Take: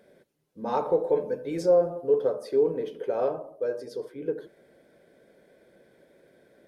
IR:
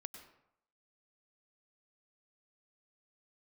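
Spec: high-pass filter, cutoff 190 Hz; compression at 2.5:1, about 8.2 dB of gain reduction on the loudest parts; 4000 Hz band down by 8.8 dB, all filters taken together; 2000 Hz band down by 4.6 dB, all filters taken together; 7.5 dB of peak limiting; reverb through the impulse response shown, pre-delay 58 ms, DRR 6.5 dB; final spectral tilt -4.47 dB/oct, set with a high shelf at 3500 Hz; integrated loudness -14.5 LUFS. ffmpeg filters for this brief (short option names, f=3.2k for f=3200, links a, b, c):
-filter_complex "[0:a]highpass=190,equalizer=f=2k:t=o:g=-3.5,highshelf=f=3.5k:g=-8.5,equalizer=f=4k:t=o:g=-4,acompressor=threshold=-30dB:ratio=2.5,alimiter=level_in=3.5dB:limit=-24dB:level=0:latency=1,volume=-3.5dB,asplit=2[a][b];[1:a]atrim=start_sample=2205,adelay=58[c];[b][c]afir=irnorm=-1:irlink=0,volume=-2dB[d];[a][d]amix=inputs=2:normalize=0,volume=21.5dB"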